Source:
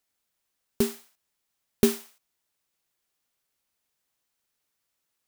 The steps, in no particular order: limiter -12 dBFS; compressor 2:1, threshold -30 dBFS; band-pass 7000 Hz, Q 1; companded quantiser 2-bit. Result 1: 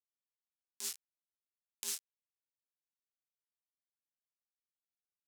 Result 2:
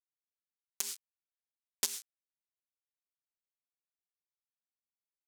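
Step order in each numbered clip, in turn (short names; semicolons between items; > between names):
compressor > companded quantiser > limiter > band-pass; companded quantiser > band-pass > compressor > limiter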